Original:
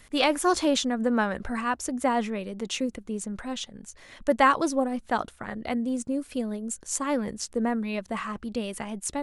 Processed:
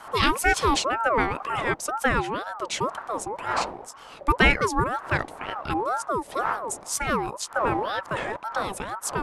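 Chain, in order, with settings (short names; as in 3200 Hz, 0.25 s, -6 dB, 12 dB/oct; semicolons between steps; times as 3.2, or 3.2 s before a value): wind noise 360 Hz -40 dBFS; ring modulator with a swept carrier 850 Hz, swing 35%, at 2 Hz; gain +4.5 dB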